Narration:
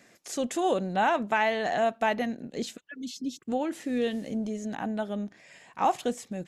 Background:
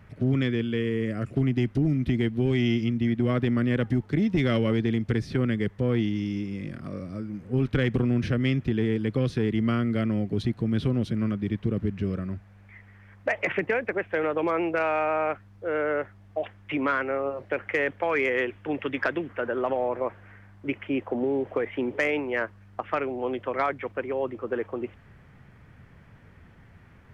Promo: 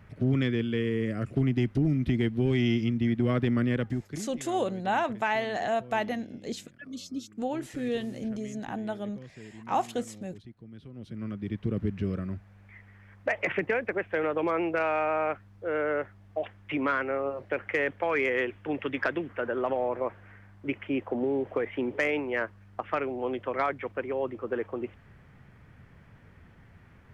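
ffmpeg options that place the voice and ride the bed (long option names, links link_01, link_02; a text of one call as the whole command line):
ffmpeg -i stem1.wav -i stem2.wav -filter_complex "[0:a]adelay=3900,volume=-2.5dB[link_01];[1:a]volume=18dB,afade=type=out:start_time=3.63:duration=0.68:silence=0.1,afade=type=in:start_time=10.92:duration=0.9:silence=0.105925[link_02];[link_01][link_02]amix=inputs=2:normalize=0" out.wav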